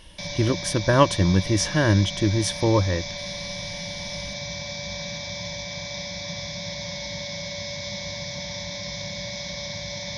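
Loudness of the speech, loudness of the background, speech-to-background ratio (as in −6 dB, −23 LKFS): −22.0 LKFS, −31.5 LKFS, 9.5 dB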